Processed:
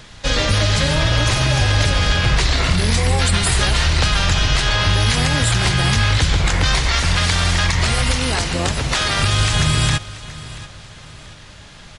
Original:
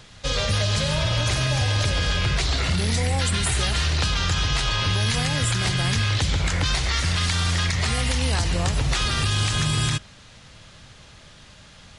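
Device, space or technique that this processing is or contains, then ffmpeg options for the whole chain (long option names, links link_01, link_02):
octave pedal: -filter_complex "[0:a]asplit=3[link_01][link_02][link_03];[link_01]afade=type=out:start_time=8.15:duration=0.02[link_04];[link_02]highpass=frequency=150:poles=1,afade=type=in:start_time=8.15:duration=0.02,afade=type=out:start_time=9.19:duration=0.02[link_05];[link_03]afade=type=in:start_time=9.19:duration=0.02[link_06];[link_04][link_05][link_06]amix=inputs=3:normalize=0,asplit=2[link_07][link_08];[link_08]asetrate=22050,aresample=44100,atempo=2,volume=-5dB[link_09];[link_07][link_09]amix=inputs=2:normalize=0,aecho=1:1:684|1368|2052:0.133|0.0493|0.0183,volume=5dB"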